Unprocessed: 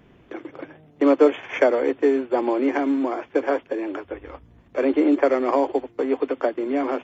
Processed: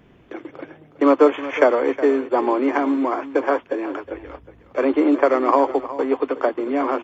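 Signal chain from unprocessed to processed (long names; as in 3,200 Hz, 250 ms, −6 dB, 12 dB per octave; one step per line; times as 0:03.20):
dynamic equaliser 1,100 Hz, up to +8 dB, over −40 dBFS, Q 2
on a send: single-tap delay 365 ms −14.5 dB
on the sum: level +1 dB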